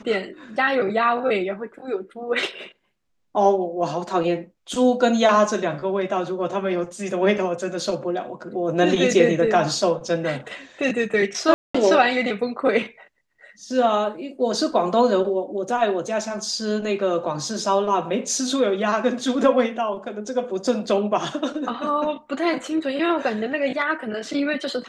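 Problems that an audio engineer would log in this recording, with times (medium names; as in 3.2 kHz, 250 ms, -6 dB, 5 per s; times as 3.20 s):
11.54–11.74 s: dropout 205 ms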